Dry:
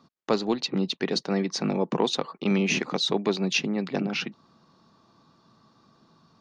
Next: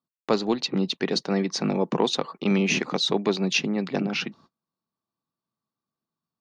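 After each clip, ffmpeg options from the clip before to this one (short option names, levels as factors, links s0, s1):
-af "agate=range=0.0251:threshold=0.00251:ratio=16:detection=peak,volume=1.19"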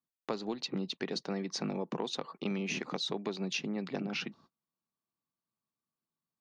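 -af "acompressor=threshold=0.0562:ratio=6,volume=0.473"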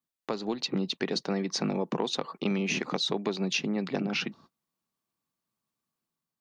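-af "dynaudnorm=f=120:g=7:m=1.58,volume=1.26"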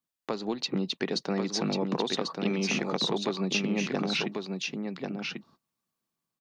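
-af "aecho=1:1:1092:0.596"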